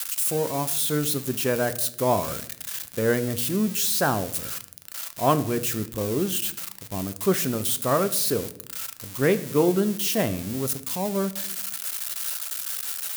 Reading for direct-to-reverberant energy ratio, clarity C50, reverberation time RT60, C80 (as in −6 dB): 11.0 dB, 15.5 dB, 0.65 s, 19.0 dB